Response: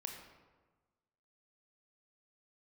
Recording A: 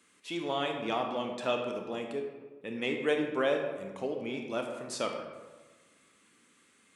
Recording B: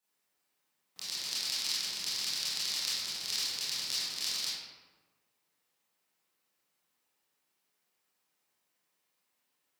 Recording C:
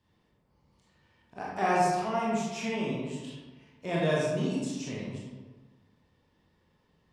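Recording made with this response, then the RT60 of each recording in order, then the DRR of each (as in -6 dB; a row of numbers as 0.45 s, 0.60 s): A; 1.3 s, 1.3 s, 1.3 s; 2.5 dB, -11.5 dB, -5.5 dB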